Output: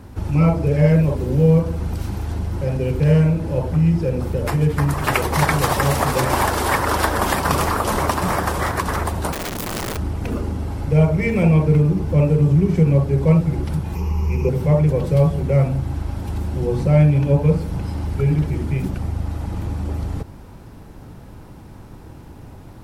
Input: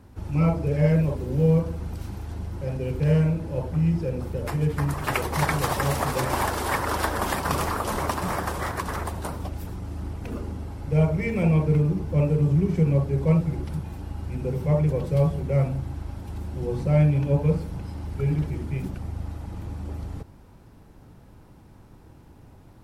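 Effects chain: 13.95–14.49 s: rippled EQ curve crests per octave 0.79, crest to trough 16 dB; in parallel at +0.5 dB: compression, threshold -32 dBFS, peak gain reduction 16 dB; 9.32–9.97 s: on the sum: integer overflow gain 25.5 dB; trim +4 dB

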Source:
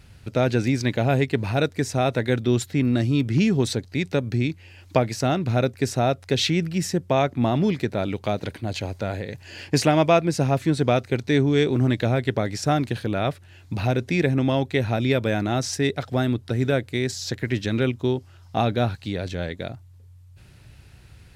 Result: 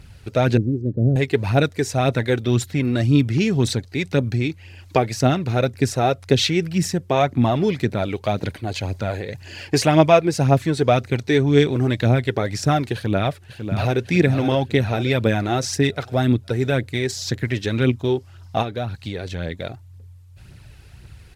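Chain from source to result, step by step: 0.57–1.16 s: inverse Chebyshev low-pass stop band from 930 Hz, stop band 40 dB; 12.94–14.01 s: echo throw 550 ms, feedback 50%, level -8.5 dB; 18.62–19.65 s: compression 4:1, threshold -26 dBFS, peak gain reduction 8.5 dB; phaser 1.9 Hz, delay 2.8 ms, feedback 43%; trim +2 dB

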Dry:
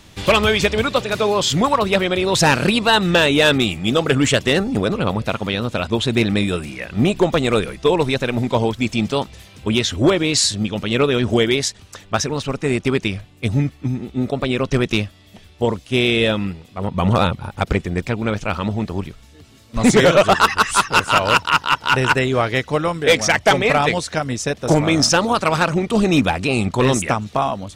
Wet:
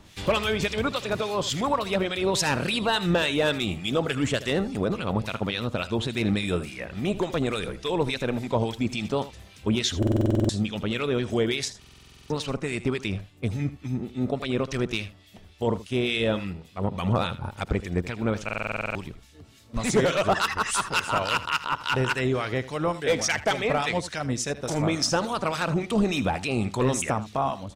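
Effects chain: peak limiter -10.5 dBFS, peak gain reduction 5.5 dB; harmonic tremolo 3.5 Hz, depth 70%, crossover 1.4 kHz; on a send: delay 79 ms -15.5 dB; on the sum: buffer glitch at 9.98/11.79/18.44 s, samples 2048, times 10; trim -2.5 dB

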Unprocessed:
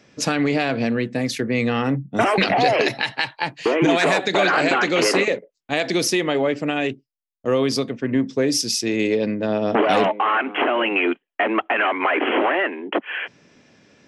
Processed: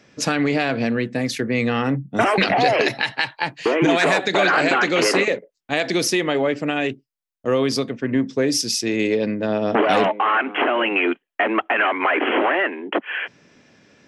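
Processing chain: peaking EQ 1.6 kHz +2 dB

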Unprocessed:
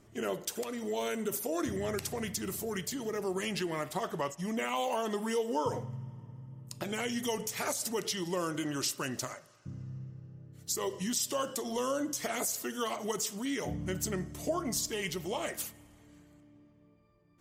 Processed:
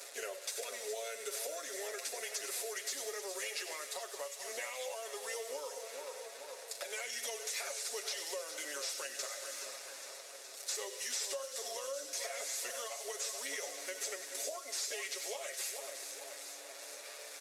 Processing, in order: one-bit delta coder 64 kbps, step -43 dBFS; Chebyshev high-pass 510 Hz, order 4; peaking EQ 2.9 kHz -3 dB 0.31 oct; comb 7.3 ms, depth 68%; two-band feedback delay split 1.5 kHz, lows 431 ms, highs 94 ms, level -11.5 dB; compression 5:1, threshold -41 dBFS, peak gain reduction 14 dB; peaking EQ 1 kHz -13.5 dB 1.5 oct; band-stop 3.1 kHz, Q 10; feedback echo behind a high-pass 417 ms, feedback 79%, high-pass 3.5 kHz, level -10 dB; trim +7.5 dB

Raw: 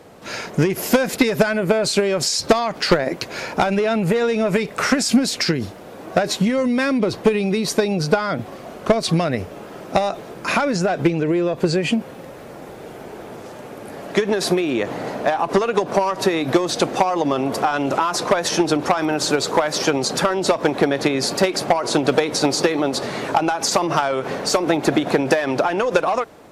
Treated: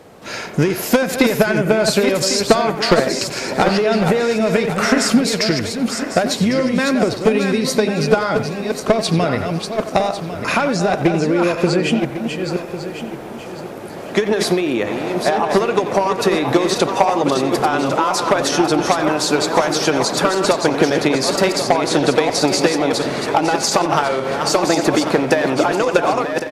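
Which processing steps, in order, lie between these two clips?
backward echo that repeats 550 ms, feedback 51%, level -6 dB; speakerphone echo 90 ms, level -10 dB; trim +1.5 dB

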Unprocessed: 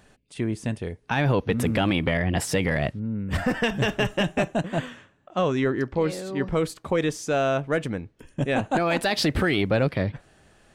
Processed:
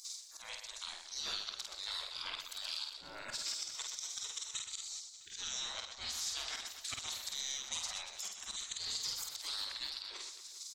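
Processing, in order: hum notches 50/100/150/200/250/300 Hz; spectral gate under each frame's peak -30 dB weak; high-order bell 5.3 kHz +15.5 dB 1.3 oct; slow attack 798 ms; compression 5:1, threshold -57 dBFS, peak gain reduction 15.5 dB; on a send: reverse bouncing-ball echo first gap 50 ms, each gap 1.5×, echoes 5; on the sum: trim +17.5 dB

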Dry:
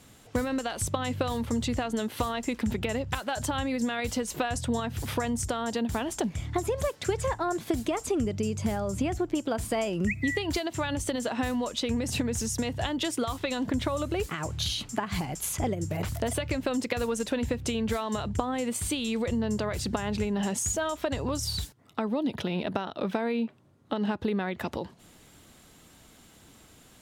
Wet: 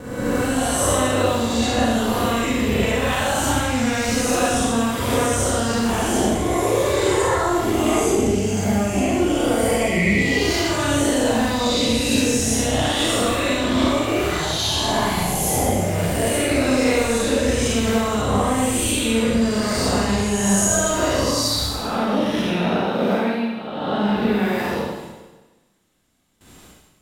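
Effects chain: reverse spectral sustain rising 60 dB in 1.41 s; gate with hold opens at -40 dBFS; Schroeder reverb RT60 1.2 s, combs from 31 ms, DRR -5 dB

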